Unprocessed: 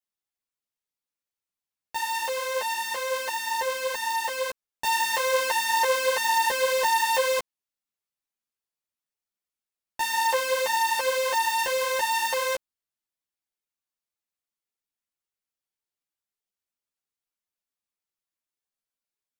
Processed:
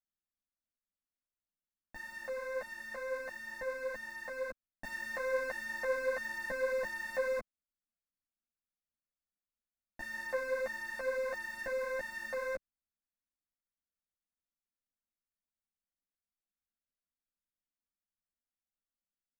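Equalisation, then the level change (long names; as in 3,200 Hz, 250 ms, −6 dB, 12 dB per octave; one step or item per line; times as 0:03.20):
bass and treble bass +14 dB, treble −13 dB
high-shelf EQ 5,200 Hz −5 dB
phaser with its sweep stopped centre 620 Hz, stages 8
−7.0 dB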